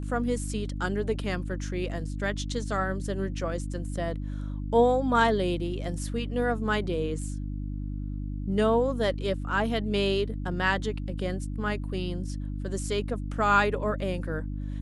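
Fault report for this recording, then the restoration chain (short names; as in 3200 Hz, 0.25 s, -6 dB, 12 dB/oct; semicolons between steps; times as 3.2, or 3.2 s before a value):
hum 50 Hz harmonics 6 -33 dBFS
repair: de-hum 50 Hz, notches 6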